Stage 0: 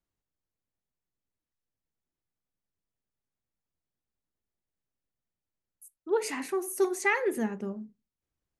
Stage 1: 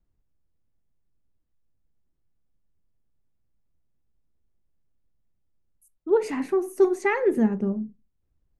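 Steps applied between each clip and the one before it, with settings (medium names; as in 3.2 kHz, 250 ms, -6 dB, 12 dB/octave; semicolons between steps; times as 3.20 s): tilt EQ -3.5 dB/octave; trim +2.5 dB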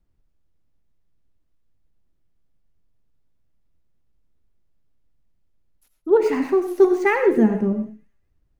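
median filter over 5 samples; feedback echo behind a high-pass 230 ms, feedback 30%, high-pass 3.1 kHz, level -17.5 dB; on a send at -7 dB: reverberation, pre-delay 45 ms; on the sum: trim +4.5 dB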